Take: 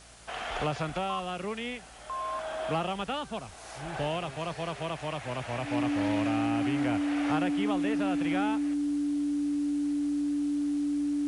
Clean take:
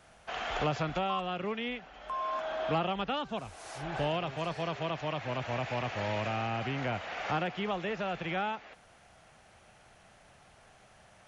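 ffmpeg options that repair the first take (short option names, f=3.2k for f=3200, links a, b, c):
-af "bandreject=f=57.7:t=h:w=4,bandreject=f=115.4:t=h:w=4,bandreject=f=173.1:t=h:w=4,bandreject=f=230.8:t=h:w=4,bandreject=f=288.5:t=h:w=4,bandreject=f=290:w=30,afwtdn=0.0025"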